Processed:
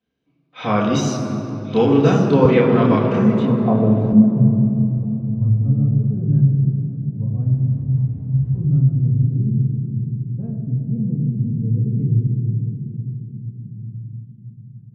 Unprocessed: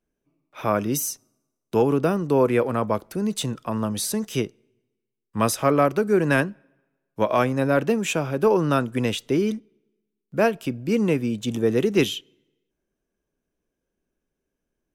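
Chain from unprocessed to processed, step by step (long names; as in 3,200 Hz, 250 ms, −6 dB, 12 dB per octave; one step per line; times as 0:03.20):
0:07.52–0:08.55: wrap-around overflow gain 21 dB
delay with a high-pass on its return 1,088 ms, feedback 68%, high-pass 2,100 Hz, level −12 dB
low-pass filter sweep 4,000 Hz → 110 Hz, 0:02.92–0:04.46
convolution reverb RT60 3.6 s, pre-delay 3 ms, DRR −7 dB
0:02.45–0:04.13: multiband upward and downward compressor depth 40%
level −10 dB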